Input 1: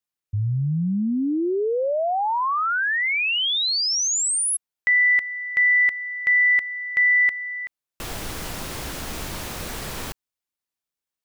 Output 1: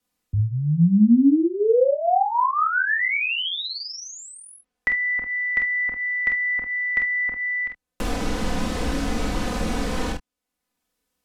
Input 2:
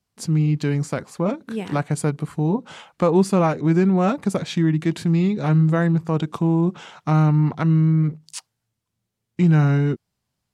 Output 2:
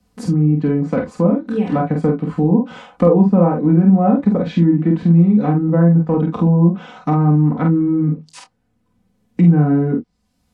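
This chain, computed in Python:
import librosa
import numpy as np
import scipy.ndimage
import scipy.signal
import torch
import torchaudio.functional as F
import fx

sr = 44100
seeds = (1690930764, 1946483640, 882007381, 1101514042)

y = fx.env_lowpass_down(x, sr, base_hz=1100.0, full_db=-16.5)
y = fx.tilt_shelf(y, sr, db=5.0, hz=700.0)
y = y + 0.78 * np.pad(y, (int(4.0 * sr / 1000.0), 0))[:len(y)]
y = fx.room_early_taps(y, sr, ms=(29, 47, 72), db=(-8.0, -3.5, -15.5))
y = fx.band_squash(y, sr, depth_pct=40)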